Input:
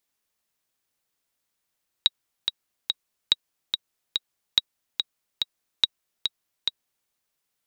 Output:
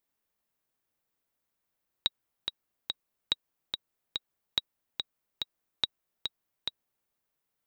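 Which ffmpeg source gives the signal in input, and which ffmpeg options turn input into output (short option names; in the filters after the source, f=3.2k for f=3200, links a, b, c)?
-f lavfi -i "aevalsrc='pow(10,(-4-6*gte(mod(t,3*60/143),60/143))/20)*sin(2*PI*3820*mod(t,60/143))*exp(-6.91*mod(t,60/143)/0.03)':d=5.03:s=44100"
-af "equalizer=f=5.9k:w=0.34:g=-9"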